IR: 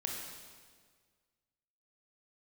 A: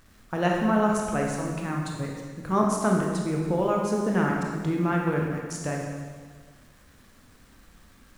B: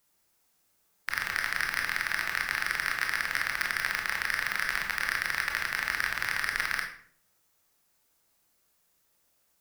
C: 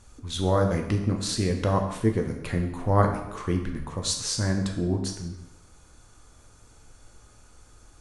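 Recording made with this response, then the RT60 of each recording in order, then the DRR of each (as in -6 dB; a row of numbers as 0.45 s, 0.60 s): A; 1.7 s, 0.60 s, 0.95 s; -1.0 dB, 1.0 dB, 2.5 dB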